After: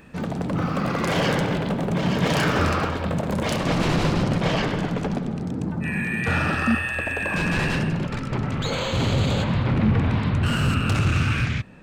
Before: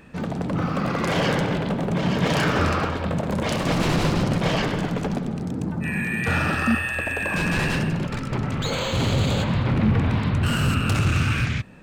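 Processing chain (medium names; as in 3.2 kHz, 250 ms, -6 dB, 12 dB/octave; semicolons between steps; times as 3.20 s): treble shelf 10 kHz +4 dB, from 3.57 s -9 dB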